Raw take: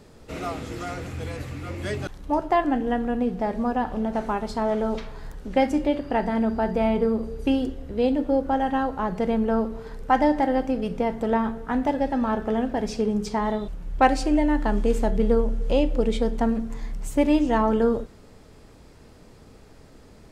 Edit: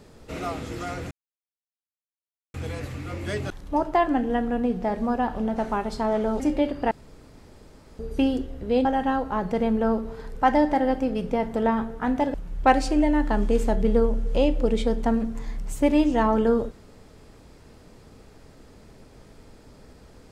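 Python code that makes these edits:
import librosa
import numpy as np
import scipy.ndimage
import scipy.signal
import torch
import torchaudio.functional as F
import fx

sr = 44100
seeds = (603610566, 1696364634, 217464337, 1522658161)

y = fx.edit(x, sr, fx.insert_silence(at_s=1.11, length_s=1.43),
    fx.cut(start_s=4.97, length_s=0.71),
    fx.room_tone_fill(start_s=6.19, length_s=1.08),
    fx.cut(start_s=8.13, length_s=0.39),
    fx.cut(start_s=12.01, length_s=1.68), tone=tone)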